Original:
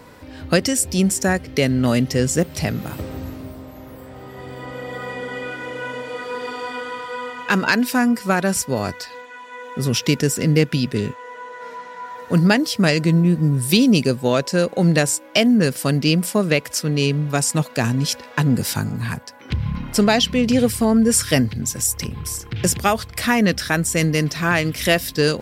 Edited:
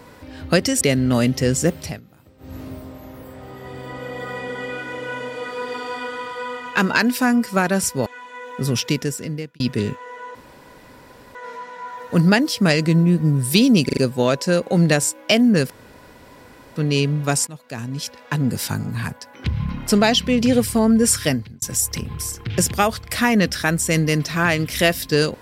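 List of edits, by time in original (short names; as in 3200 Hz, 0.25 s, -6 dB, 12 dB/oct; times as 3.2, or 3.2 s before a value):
0.81–1.54 cut
2.48–3.37 dip -22 dB, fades 0.26 s
8.79–9.24 cut
9.82–10.78 fade out
11.53 insert room tone 1.00 s
14.03 stutter 0.04 s, 4 plays
15.76–16.82 room tone
17.53–19.58 fade in equal-power, from -20.5 dB
21.22–21.68 fade out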